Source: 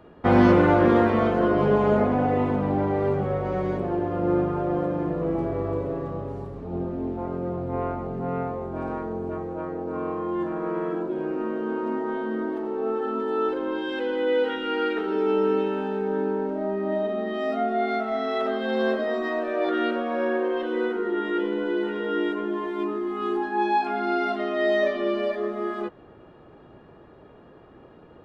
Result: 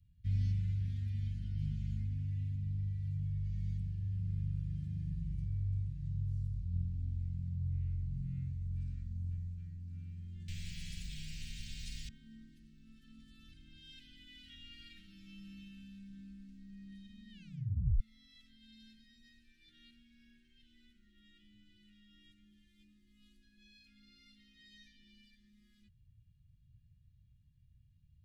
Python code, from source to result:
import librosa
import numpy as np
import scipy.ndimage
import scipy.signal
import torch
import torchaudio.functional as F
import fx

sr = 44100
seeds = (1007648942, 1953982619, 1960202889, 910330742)

y = fx.spectral_comp(x, sr, ratio=4.0, at=(10.48, 12.09))
y = fx.edit(y, sr, fx.tape_stop(start_s=17.31, length_s=0.69), tone=tone)
y = scipy.signal.sosfilt(scipy.signal.cheby2(4, 80, [430.0, 1100.0], 'bandstop', fs=sr, output='sos'), y)
y = fx.high_shelf_res(y, sr, hz=2600.0, db=-9.0, q=1.5)
y = fx.rider(y, sr, range_db=4, speed_s=0.5)